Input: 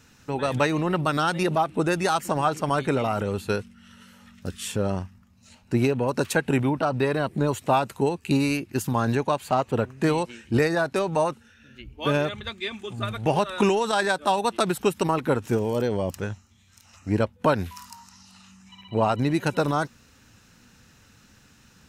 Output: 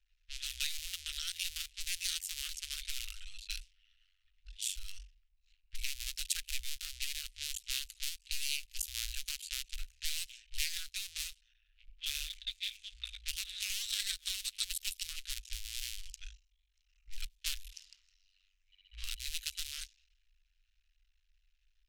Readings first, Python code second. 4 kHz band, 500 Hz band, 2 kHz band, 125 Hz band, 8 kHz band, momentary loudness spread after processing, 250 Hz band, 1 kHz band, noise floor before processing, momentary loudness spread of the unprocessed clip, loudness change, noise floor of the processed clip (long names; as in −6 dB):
−1.0 dB, below −40 dB, −14.0 dB, below −30 dB, +0.5 dB, 11 LU, below −40 dB, below −40 dB, −57 dBFS, 9 LU, −13.5 dB, −76 dBFS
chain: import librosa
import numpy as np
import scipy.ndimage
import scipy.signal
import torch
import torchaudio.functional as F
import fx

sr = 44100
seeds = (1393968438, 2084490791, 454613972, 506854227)

y = fx.cycle_switch(x, sr, every=2, mode='muted')
y = scipy.signal.sosfilt(scipy.signal.cheby2(4, 70, [140.0, 790.0], 'bandstop', fs=sr, output='sos'), y)
y = fx.env_lowpass(y, sr, base_hz=1100.0, full_db=-36.5)